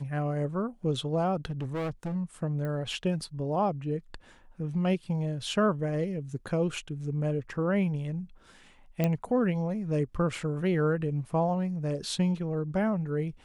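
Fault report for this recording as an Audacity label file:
1.450000	2.160000	clipped -29 dBFS
2.650000	2.650000	pop -25 dBFS
9.040000	9.040000	pop -14 dBFS

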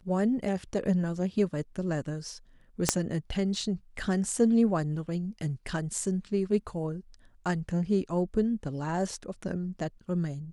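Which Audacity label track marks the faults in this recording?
2.890000	2.890000	pop -6 dBFS

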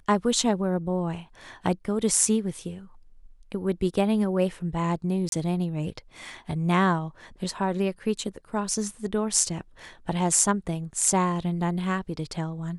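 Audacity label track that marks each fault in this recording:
5.290000	5.320000	gap 32 ms

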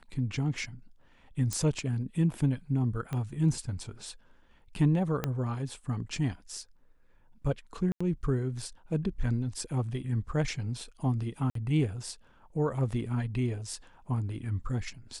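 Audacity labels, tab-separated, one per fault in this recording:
1.530000	1.530000	pop -17 dBFS
3.130000	3.130000	pop -22 dBFS
5.240000	5.240000	pop -15 dBFS
7.920000	8.010000	gap 85 ms
11.500000	11.550000	gap 53 ms

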